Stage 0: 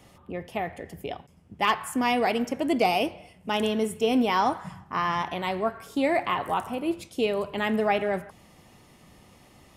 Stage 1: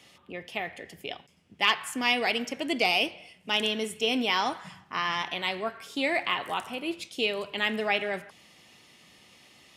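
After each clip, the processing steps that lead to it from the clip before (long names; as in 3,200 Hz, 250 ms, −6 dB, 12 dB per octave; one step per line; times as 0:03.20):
meter weighting curve D
level −5 dB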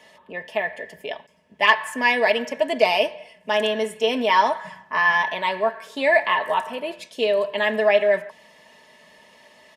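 comb filter 4.6 ms, depth 52%
hollow resonant body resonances 600/940/1,700 Hz, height 18 dB, ringing for 30 ms
level −2 dB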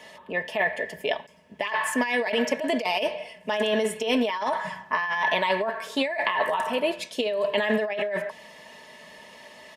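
compressor whose output falls as the input rises −25 dBFS, ratio −1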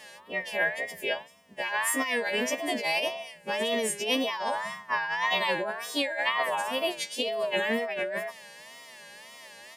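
every partial snapped to a pitch grid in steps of 2 semitones
tape wow and flutter 130 cents
level −4.5 dB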